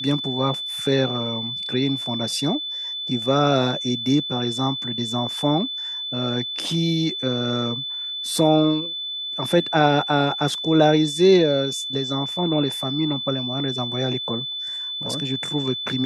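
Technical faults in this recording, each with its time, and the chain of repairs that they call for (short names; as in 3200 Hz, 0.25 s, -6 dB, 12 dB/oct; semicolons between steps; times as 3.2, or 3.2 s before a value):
tone 3500 Hz -27 dBFS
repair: notch 3500 Hz, Q 30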